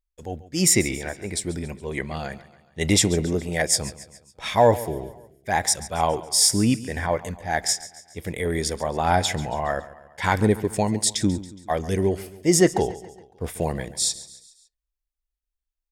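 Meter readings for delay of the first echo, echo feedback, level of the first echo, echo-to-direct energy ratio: 0.139 s, 51%, -17.0 dB, -15.5 dB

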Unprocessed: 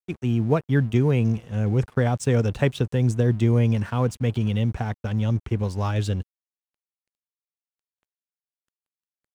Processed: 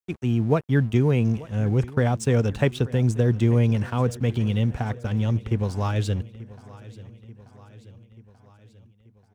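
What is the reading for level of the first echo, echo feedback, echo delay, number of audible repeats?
-19.5 dB, 59%, 0.885 s, 4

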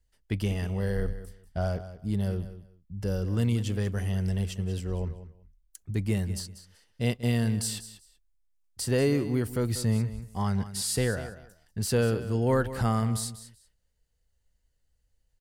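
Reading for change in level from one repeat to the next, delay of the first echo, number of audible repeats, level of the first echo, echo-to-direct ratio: -14.5 dB, 0.19 s, 2, -13.5 dB, -13.5 dB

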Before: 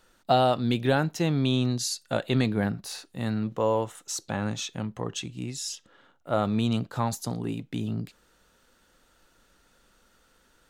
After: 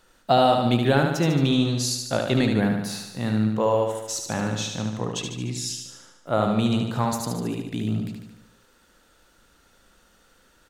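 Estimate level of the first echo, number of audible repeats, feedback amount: -5.0 dB, 7, 58%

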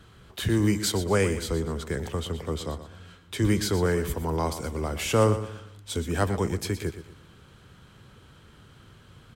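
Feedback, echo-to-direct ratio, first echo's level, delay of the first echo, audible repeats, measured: 35%, -11.5 dB, -12.0 dB, 0.12 s, 3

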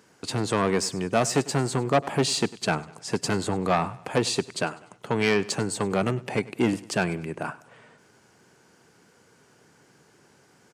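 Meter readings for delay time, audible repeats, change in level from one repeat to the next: 99 ms, 3, -7.0 dB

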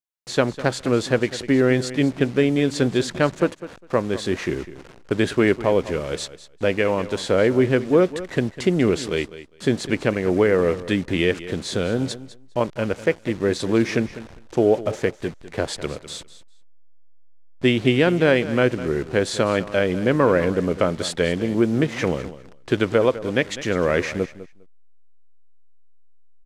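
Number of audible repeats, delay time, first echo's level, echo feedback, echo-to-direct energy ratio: 2, 0.202 s, -15.0 dB, 16%, -15.0 dB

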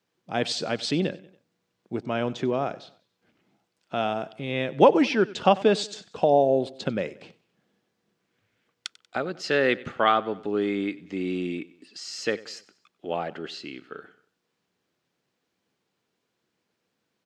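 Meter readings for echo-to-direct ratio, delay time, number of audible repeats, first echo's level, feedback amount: -19.0 dB, 94 ms, 3, -20.0 dB, 46%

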